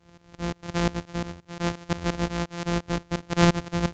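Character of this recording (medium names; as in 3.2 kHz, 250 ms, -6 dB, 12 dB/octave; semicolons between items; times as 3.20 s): a buzz of ramps at a fixed pitch in blocks of 256 samples; tremolo saw up 5.7 Hz, depth 90%; µ-law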